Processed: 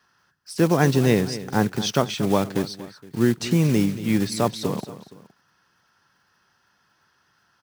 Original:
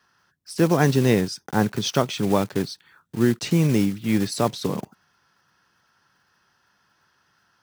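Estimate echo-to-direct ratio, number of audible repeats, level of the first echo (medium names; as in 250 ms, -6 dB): -13.5 dB, 2, -14.5 dB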